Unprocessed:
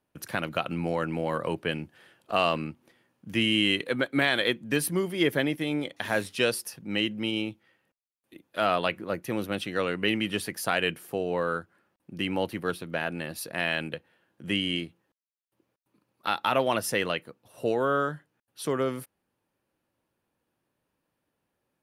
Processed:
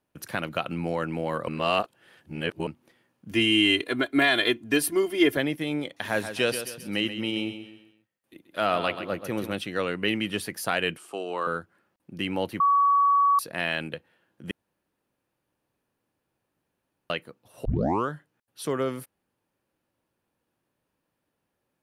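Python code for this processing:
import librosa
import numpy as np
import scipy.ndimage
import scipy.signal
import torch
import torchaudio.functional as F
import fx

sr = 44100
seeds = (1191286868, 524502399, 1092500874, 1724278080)

y = fx.comb(x, sr, ms=2.9, depth=0.89, at=(3.31, 5.37))
y = fx.echo_feedback(y, sr, ms=132, feedback_pct=40, wet_db=-10.0, at=(6.01, 9.53))
y = fx.cabinet(y, sr, low_hz=230.0, low_slope=24, high_hz=9800.0, hz=(240.0, 500.0, 1200.0, 1800.0, 2900.0, 8100.0), db=(-10, -7, 9, -7, 6, 8), at=(10.97, 11.47))
y = fx.edit(y, sr, fx.reverse_span(start_s=1.48, length_s=1.19),
    fx.bleep(start_s=12.6, length_s=0.79, hz=1130.0, db=-17.0),
    fx.room_tone_fill(start_s=14.51, length_s=2.59),
    fx.tape_start(start_s=17.65, length_s=0.43), tone=tone)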